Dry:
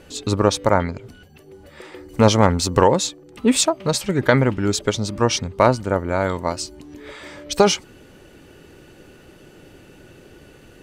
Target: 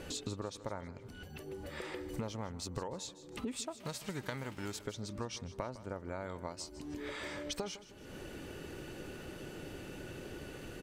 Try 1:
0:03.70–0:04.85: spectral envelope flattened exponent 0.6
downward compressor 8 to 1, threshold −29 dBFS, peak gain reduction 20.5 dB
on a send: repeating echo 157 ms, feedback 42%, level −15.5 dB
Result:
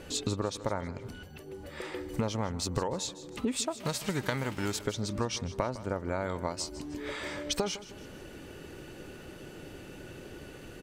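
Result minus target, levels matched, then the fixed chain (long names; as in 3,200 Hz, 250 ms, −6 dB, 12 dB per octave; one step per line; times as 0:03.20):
downward compressor: peak gain reduction −9 dB
0:03.70–0:04.85: spectral envelope flattened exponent 0.6
downward compressor 8 to 1, threshold −39 dBFS, peak gain reduction 29 dB
on a send: repeating echo 157 ms, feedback 42%, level −15.5 dB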